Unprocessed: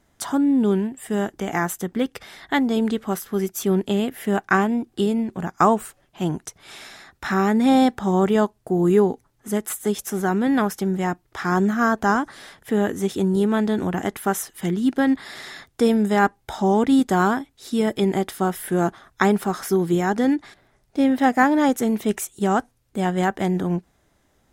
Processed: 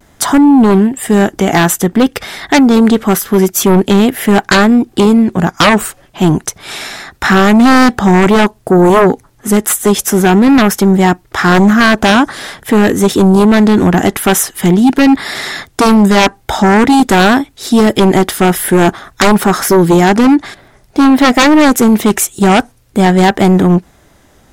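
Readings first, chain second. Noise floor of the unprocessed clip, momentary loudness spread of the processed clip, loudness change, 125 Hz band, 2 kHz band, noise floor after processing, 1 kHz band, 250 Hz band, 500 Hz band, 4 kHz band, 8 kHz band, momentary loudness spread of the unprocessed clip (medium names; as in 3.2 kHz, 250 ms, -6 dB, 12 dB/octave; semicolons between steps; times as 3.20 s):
-64 dBFS, 7 LU, +12.5 dB, +13.5 dB, +13.5 dB, -48 dBFS, +11.0 dB, +12.5 dB, +11.0 dB, +17.5 dB, +16.5 dB, 10 LU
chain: sine folder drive 13 dB, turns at -3 dBFS; vibrato 0.48 Hz 27 cents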